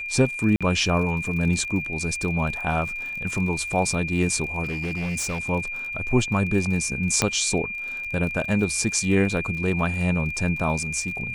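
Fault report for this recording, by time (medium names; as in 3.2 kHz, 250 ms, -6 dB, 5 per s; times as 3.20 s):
crackle 45 per s -32 dBFS
whine 2.4 kHz -29 dBFS
0.56–0.61 s: dropout 46 ms
4.63–5.49 s: clipped -24 dBFS
7.22 s: pop -5 dBFS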